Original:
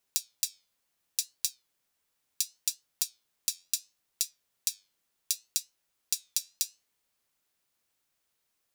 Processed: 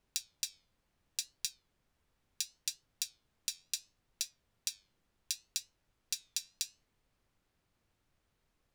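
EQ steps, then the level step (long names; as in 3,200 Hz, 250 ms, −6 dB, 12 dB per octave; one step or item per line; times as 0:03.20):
RIAA equalisation playback
+4.0 dB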